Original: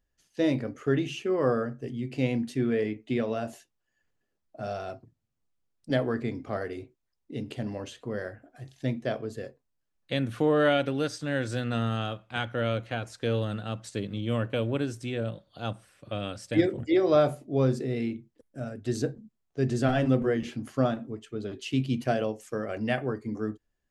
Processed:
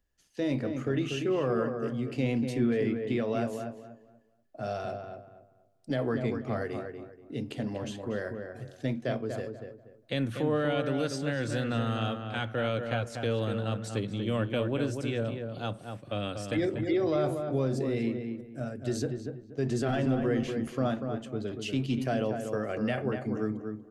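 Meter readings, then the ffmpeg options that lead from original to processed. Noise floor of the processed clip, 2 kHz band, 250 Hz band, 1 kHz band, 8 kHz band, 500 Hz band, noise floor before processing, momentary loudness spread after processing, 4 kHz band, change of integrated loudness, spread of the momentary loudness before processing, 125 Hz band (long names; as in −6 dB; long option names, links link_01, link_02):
−61 dBFS, −2.5 dB, −1.0 dB, −2.0 dB, 0.0 dB, −2.0 dB, −79 dBFS, 10 LU, −1.5 dB, −2.0 dB, 13 LU, −1.0 dB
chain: -filter_complex "[0:a]acrossover=split=150[link_01][link_02];[link_01]asoftclip=type=hard:threshold=-36.5dB[link_03];[link_02]alimiter=limit=-21.5dB:level=0:latency=1:release=53[link_04];[link_03][link_04]amix=inputs=2:normalize=0,asplit=2[link_05][link_06];[link_06]adelay=240,lowpass=frequency=1800:poles=1,volume=-5.5dB,asplit=2[link_07][link_08];[link_08]adelay=240,lowpass=frequency=1800:poles=1,volume=0.29,asplit=2[link_09][link_10];[link_10]adelay=240,lowpass=frequency=1800:poles=1,volume=0.29,asplit=2[link_11][link_12];[link_12]adelay=240,lowpass=frequency=1800:poles=1,volume=0.29[link_13];[link_05][link_07][link_09][link_11][link_13]amix=inputs=5:normalize=0"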